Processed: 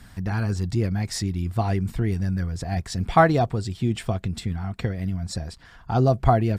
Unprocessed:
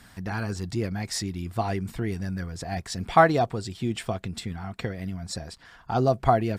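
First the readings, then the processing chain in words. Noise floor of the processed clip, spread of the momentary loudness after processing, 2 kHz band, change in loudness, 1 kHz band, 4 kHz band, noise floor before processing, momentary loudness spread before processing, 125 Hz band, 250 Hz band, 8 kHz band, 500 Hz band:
-49 dBFS, 10 LU, 0.0 dB, +3.0 dB, +0.5 dB, 0.0 dB, -53 dBFS, 14 LU, +7.0 dB, +3.5 dB, 0.0 dB, +1.0 dB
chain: low shelf 160 Hz +11 dB

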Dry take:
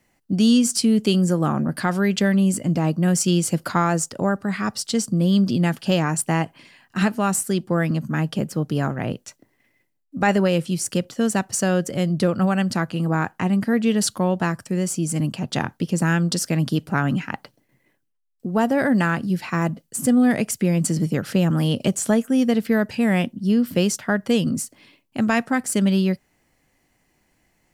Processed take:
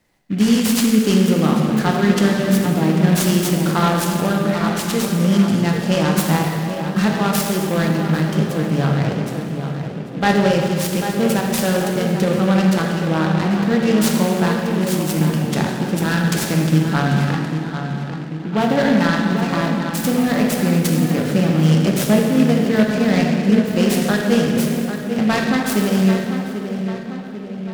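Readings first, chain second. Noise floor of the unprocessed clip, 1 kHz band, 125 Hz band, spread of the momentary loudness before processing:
-68 dBFS, +4.0 dB, +4.5 dB, 7 LU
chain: on a send: darkening echo 0.793 s, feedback 58%, low-pass 2000 Hz, level -8 dB; on the sum: plate-style reverb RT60 2.3 s, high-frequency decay 0.75×, DRR -0.5 dB; noise-modulated delay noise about 2000 Hz, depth 0.044 ms

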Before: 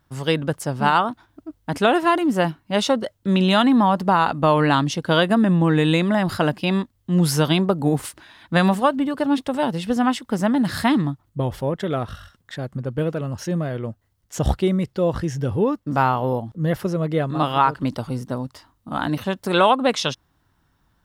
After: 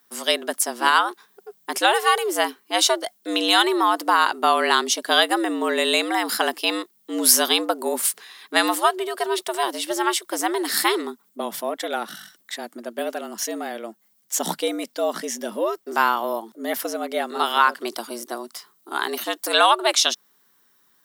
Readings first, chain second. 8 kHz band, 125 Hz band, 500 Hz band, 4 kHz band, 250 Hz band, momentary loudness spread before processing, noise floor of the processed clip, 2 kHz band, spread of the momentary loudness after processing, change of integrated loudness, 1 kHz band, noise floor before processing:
+12.0 dB, -32.0 dB, -2.5 dB, +6.0 dB, -9.0 dB, 11 LU, -62 dBFS, +3.5 dB, 15 LU, -0.5 dB, +0.5 dB, -66 dBFS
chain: RIAA curve recording; frequency shift +110 Hz

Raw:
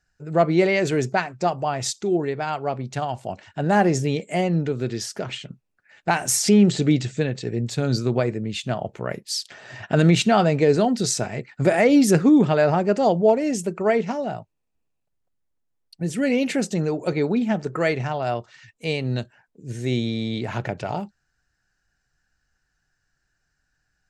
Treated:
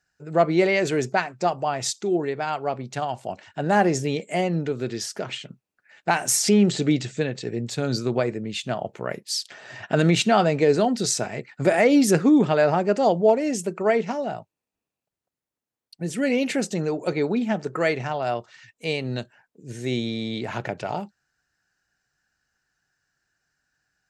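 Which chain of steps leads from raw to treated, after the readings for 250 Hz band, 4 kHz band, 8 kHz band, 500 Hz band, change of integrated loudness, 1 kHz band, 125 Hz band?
-2.0 dB, 0.0 dB, 0.0 dB, -0.5 dB, -1.5 dB, -0.5 dB, -4.5 dB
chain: HPF 200 Hz 6 dB/oct

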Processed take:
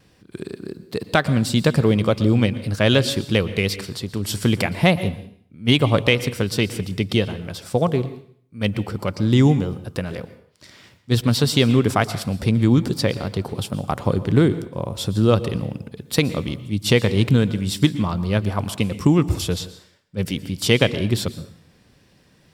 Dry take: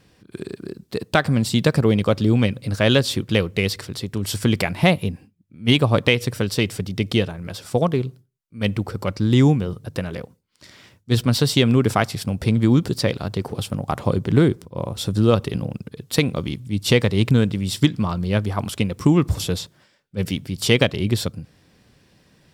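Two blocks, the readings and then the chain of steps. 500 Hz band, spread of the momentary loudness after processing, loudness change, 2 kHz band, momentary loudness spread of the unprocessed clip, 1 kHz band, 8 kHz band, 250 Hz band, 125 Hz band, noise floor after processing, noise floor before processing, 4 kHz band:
0.0 dB, 12 LU, 0.0 dB, 0.0 dB, 12 LU, 0.0 dB, 0.0 dB, 0.0 dB, 0.0 dB, -57 dBFS, -60 dBFS, 0.0 dB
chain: plate-style reverb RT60 0.59 s, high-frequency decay 0.9×, pre-delay 0.105 s, DRR 14.5 dB; wow and flutter 18 cents

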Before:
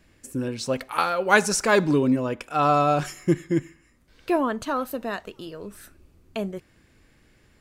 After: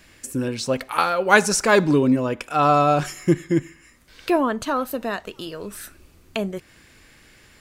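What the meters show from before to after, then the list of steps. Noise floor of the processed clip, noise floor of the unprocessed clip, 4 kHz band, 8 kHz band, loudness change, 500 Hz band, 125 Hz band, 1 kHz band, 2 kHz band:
-53 dBFS, -60 dBFS, +3.5 dB, +3.5 dB, +3.0 dB, +3.0 dB, +3.0 dB, +3.0 dB, +3.0 dB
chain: mismatched tape noise reduction encoder only; gain +3 dB

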